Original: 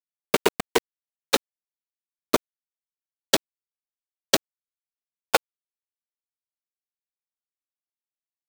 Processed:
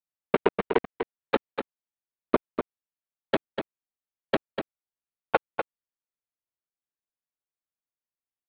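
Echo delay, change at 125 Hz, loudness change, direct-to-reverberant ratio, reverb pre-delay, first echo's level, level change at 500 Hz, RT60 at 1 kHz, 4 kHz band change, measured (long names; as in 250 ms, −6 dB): 246 ms, +0.5 dB, −5.0 dB, no reverb audible, no reverb audible, −7.5 dB, −0.5 dB, no reverb audible, −14.5 dB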